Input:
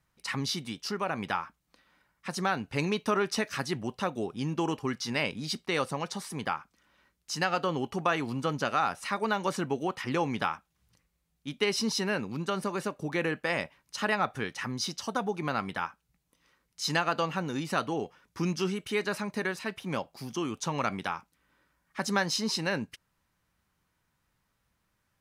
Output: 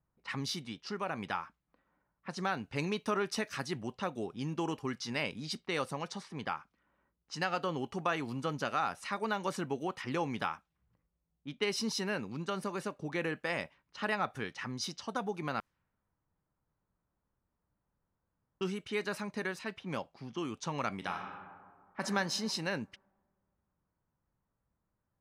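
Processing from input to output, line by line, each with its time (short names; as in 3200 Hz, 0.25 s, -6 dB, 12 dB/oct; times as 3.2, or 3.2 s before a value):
15.6–18.61 room tone
20.96–22.02 reverb throw, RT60 1.9 s, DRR 2.5 dB
whole clip: low-pass opened by the level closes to 950 Hz, open at -28.5 dBFS; gain -5 dB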